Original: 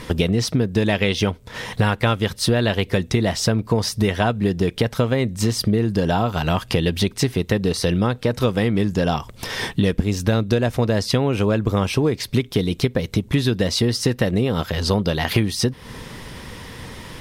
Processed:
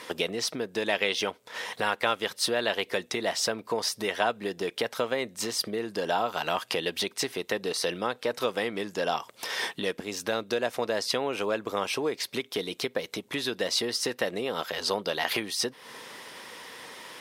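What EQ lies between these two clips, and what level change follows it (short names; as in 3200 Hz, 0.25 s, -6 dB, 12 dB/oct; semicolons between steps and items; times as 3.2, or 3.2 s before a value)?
HPF 480 Hz 12 dB/oct; -4.0 dB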